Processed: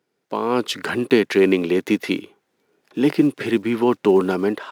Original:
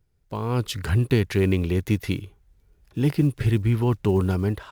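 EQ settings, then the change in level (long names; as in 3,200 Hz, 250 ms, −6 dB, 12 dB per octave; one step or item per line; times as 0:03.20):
high-pass filter 240 Hz 24 dB per octave
high-shelf EQ 7,000 Hz −11 dB
+8.5 dB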